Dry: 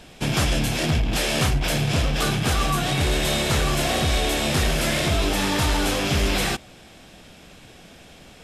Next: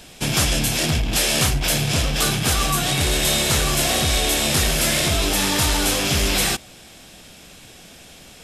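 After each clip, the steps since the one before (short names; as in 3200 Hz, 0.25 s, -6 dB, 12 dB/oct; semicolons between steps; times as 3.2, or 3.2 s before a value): high shelf 4200 Hz +11 dB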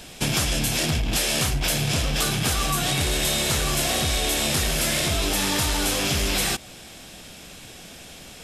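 compressor 4:1, threshold -22 dBFS, peak gain reduction 7 dB; gain +1.5 dB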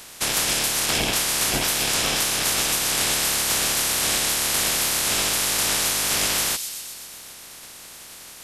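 spectral limiter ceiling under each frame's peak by 25 dB; thin delay 0.126 s, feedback 67%, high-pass 3800 Hz, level -7 dB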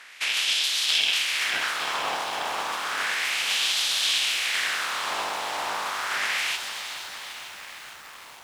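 LFO band-pass sine 0.32 Hz 860–3500 Hz; lo-fi delay 0.459 s, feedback 80%, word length 8-bit, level -11 dB; gain +5.5 dB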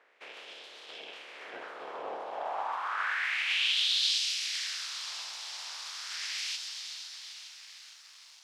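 band-pass sweep 460 Hz -> 5100 Hz, 2.18–4.19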